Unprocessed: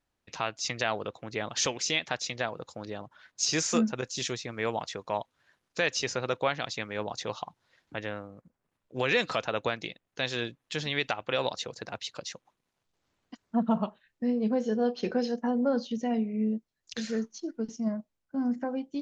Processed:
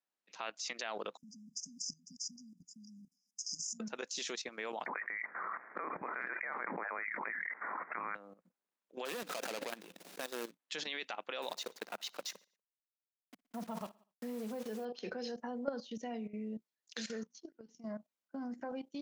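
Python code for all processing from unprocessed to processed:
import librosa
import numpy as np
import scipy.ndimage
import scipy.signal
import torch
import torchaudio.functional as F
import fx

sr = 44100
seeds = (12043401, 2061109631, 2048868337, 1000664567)

y = fx.chain(x, sr, fx.brickwall_bandstop(low_hz=270.0, high_hz=4800.0),
    fx.over_compress(threshold_db=-37.0, ratio=-1.0), at=(1.17, 3.8))
y = fx.chain(y, sr, fx.highpass(hz=950.0, slope=24),
    fx.freq_invert(carrier_hz=2900),
    fx.env_flatten(amount_pct=100), at=(4.86, 8.15))
y = fx.chain(y, sr, fx.median_filter(points=41),
    fx.high_shelf(hz=2500.0, db=12.0),
    fx.pre_swell(db_per_s=63.0), at=(9.05, 10.59))
y = fx.chain(y, sr, fx.delta_hold(step_db=-41.5),
    fx.echo_feedback(ms=60, feedback_pct=52, wet_db=-22), at=(11.42, 14.85))
y = fx.chain(y, sr, fx.lowpass(hz=7100.0, slope=12),
    fx.hum_notches(base_hz=60, count=4),
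    fx.level_steps(step_db=18), at=(17.24, 17.85))
y = scipy.signal.sosfilt(scipy.signal.ellip(4, 1.0, 40, 180.0, 'highpass', fs=sr, output='sos'), y)
y = fx.low_shelf(y, sr, hz=420.0, db=-10.0)
y = fx.level_steps(y, sr, step_db=14)
y = F.gain(torch.from_numpy(y), 1.5).numpy()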